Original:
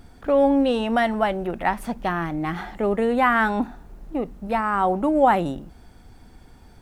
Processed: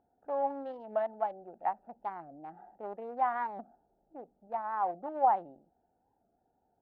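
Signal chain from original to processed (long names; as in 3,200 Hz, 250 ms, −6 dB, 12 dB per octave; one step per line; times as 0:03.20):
adaptive Wiener filter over 41 samples
resonant band-pass 800 Hz, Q 3.8
wow of a warped record 45 rpm, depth 160 cents
level −4.5 dB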